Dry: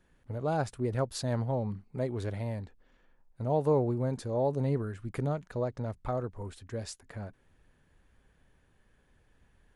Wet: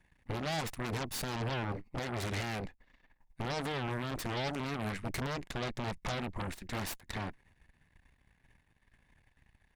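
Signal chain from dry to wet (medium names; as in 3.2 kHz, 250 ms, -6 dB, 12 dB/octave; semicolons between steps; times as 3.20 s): peaking EQ 2.2 kHz +14 dB 0.31 oct; comb 1.1 ms, depth 49%; peak limiter -27 dBFS, peak gain reduction 10 dB; Chebyshev shaper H 3 -19 dB, 8 -7 dB, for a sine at -27 dBFS; trim -2 dB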